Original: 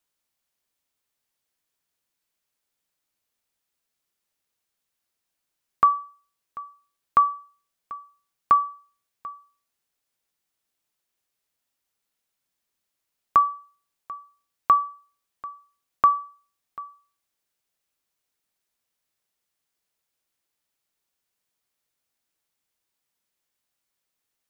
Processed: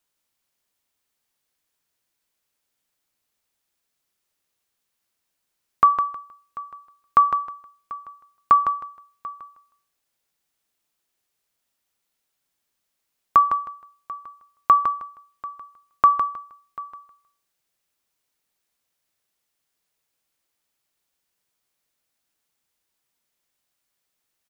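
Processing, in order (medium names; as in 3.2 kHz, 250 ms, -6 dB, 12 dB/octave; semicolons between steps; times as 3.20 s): feedback delay 157 ms, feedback 22%, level -7 dB; trim +2.5 dB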